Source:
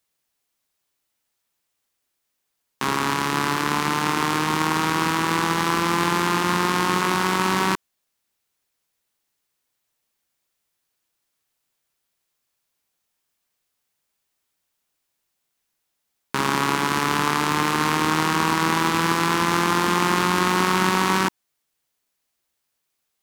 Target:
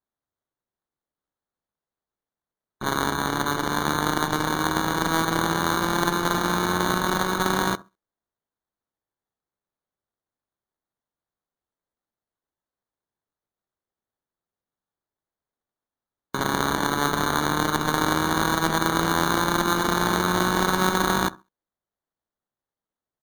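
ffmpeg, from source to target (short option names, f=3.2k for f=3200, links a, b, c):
-af "acrusher=samples=17:mix=1:aa=0.000001,aecho=1:1:67|134|201:0.112|0.0404|0.0145,afftdn=nr=15:nf=-40,volume=-2dB"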